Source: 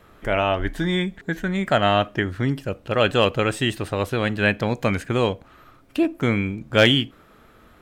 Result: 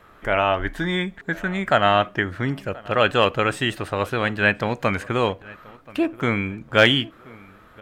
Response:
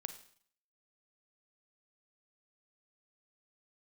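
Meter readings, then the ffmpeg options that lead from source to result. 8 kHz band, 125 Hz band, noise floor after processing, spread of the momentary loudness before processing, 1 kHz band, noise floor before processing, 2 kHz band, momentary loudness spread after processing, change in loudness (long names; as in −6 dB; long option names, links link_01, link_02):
−2.5 dB, −3.0 dB, −50 dBFS, 8 LU, +3.0 dB, −53 dBFS, +2.5 dB, 10 LU, +0.5 dB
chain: -filter_complex "[0:a]equalizer=frequency=1300:width=0.62:gain=7,asplit=2[link_01][link_02];[link_02]adelay=1029,lowpass=frequency=2900:poles=1,volume=-22dB,asplit=2[link_03][link_04];[link_04]adelay=1029,lowpass=frequency=2900:poles=1,volume=0.37,asplit=2[link_05][link_06];[link_06]adelay=1029,lowpass=frequency=2900:poles=1,volume=0.37[link_07];[link_03][link_05][link_07]amix=inputs=3:normalize=0[link_08];[link_01][link_08]amix=inputs=2:normalize=0,volume=-3dB"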